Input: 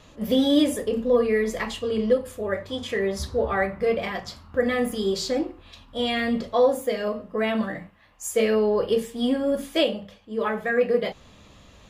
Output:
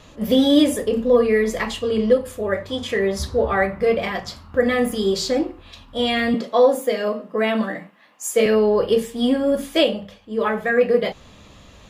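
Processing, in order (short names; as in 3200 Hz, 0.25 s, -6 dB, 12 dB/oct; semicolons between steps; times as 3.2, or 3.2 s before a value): 6.34–8.46 HPF 190 Hz 24 dB/oct; gain +4.5 dB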